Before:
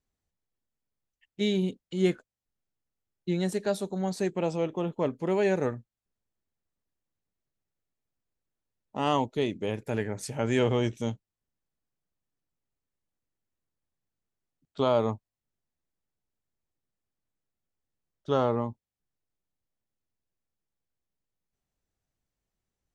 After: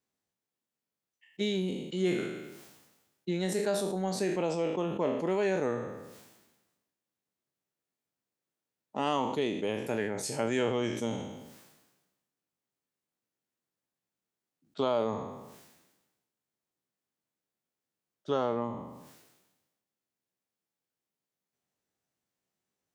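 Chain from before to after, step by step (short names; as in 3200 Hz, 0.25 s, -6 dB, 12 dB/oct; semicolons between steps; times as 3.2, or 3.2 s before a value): spectral trails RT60 0.44 s; compressor 2:1, threshold -28 dBFS, peak gain reduction 5.5 dB; HPF 180 Hz 12 dB/oct; sustainer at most 48 dB/s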